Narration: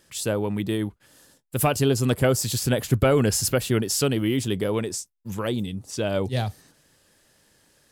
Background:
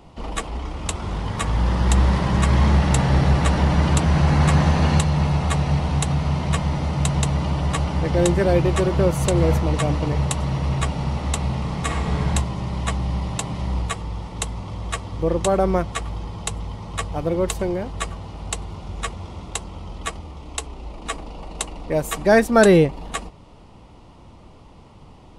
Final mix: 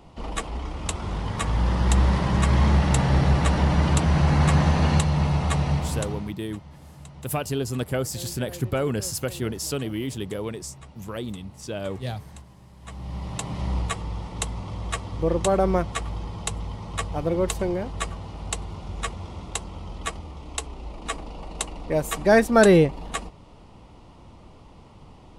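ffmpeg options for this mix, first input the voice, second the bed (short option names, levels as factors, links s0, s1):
-filter_complex "[0:a]adelay=5700,volume=0.501[s0];[1:a]volume=8.41,afade=t=out:st=5.67:d=0.68:silence=0.0944061,afade=t=in:st=12.8:d=0.86:silence=0.0891251[s1];[s0][s1]amix=inputs=2:normalize=0"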